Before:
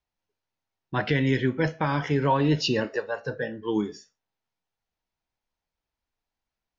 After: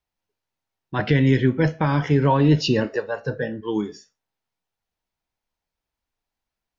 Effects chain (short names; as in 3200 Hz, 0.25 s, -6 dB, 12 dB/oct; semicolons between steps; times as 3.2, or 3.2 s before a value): 0.99–3.61 low shelf 350 Hz +7 dB; gain +1.5 dB